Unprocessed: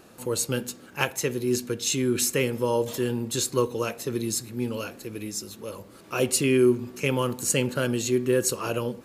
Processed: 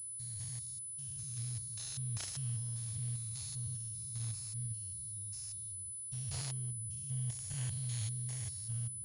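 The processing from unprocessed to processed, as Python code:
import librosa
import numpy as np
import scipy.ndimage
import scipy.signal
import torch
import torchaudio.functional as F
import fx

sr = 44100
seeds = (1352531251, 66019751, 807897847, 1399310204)

p1 = fx.spec_steps(x, sr, hold_ms=200)
p2 = fx.level_steps(p1, sr, step_db=15)
p3 = p1 + F.gain(torch.from_numpy(p2), 2.5).numpy()
p4 = scipy.signal.sosfilt(scipy.signal.cheby2(4, 40, [230.0, 2500.0], 'bandstop', fs=sr, output='sos'), p3)
p5 = fx.pwm(p4, sr, carrier_hz=10000.0)
y = F.gain(torch.from_numpy(p5), -6.5).numpy()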